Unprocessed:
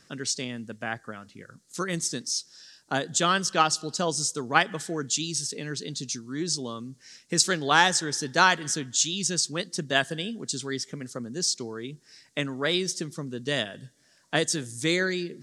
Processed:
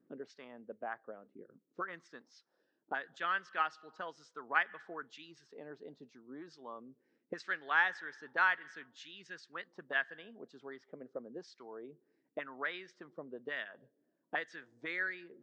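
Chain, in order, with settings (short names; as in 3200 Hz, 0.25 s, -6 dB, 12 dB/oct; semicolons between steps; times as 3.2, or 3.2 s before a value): bell 86 Hz -14 dB 1.1 oct; auto-wah 280–1800 Hz, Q 2.2, up, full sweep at -25 dBFS; tape spacing loss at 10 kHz 32 dB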